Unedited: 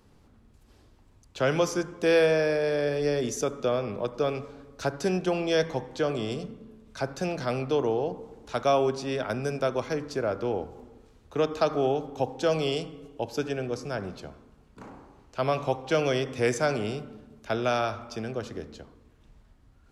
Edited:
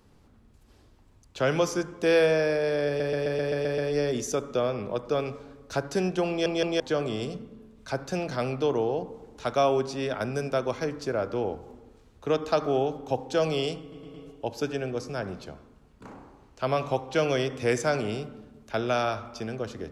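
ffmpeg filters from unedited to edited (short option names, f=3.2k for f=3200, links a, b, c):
-filter_complex "[0:a]asplit=14[a][b][c][d][e][f][g][h][i][j][k][l][m][n];[a]atrim=end=3.002[o];[b]atrim=start=2.868:end=3.002[p];[c]atrim=start=2.868:end=3.002[q];[d]atrim=start=2.868:end=3.002[r];[e]atrim=start=2.868:end=3.002[s];[f]atrim=start=2.868:end=3.002[t];[g]atrim=start=2.868:end=3.002[u];[h]atrim=start=2.868:end=5.552[v];[i]atrim=start=5.378:end=5.552[w];[j]atrim=start=5.378:end=5.552[x];[k]atrim=start=5.888:end=13.012[y];[l]atrim=start=12.898:end=13.012[z];[m]atrim=start=12.898:end=13.012[aa];[n]atrim=start=12.898[ab];[o][p]acrossfade=d=0.004:c1=hsin:c2=hsin[ac];[ac][q]acrossfade=d=0.004:c1=hsin:c2=hsin[ad];[ad][r]acrossfade=d=0.004:c1=hsin:c2=hsin[ae];[ae][s]acrossfade=d=0.004:c1=hsin:c2=hsin[af];[af][t]acrossfade=d=0.004:c1=hsin:c2=hsin[ag];[ag][u]acrossfade=d=0.004:c1=hsin:c2=hsin[ah];[ah][v]acrossfade=d=0.004:c1=hsin:c2=hsin[ai];[ai][w]acrossfade=d=0.004:c1=hsin:c2=hsin[aj];[aj][x]acrossfade=d=0.004:c1=hsin:c2=hsin[ak];[ak][y]acrossfade=d=0.004:c1=hsin:c2=hsin[al];[al][z]acrossfade=d=0.004:c1=hsin:c2=hsin[am];[am][aa]acrossfade=d=0.004:c1=hsin:c2=hsin[an];[an][ab]acrossfade=d=0.004:c1=hsin:c2=hsin"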